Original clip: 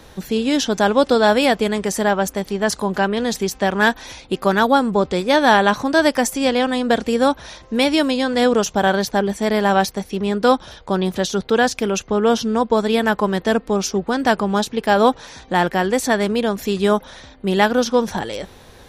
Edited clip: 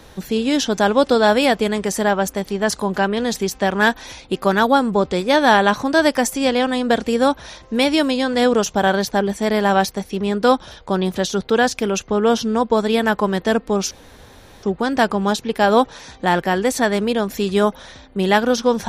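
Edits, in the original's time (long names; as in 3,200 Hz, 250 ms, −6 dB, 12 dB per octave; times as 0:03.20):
0:13.91: splice in room tone 0.72 s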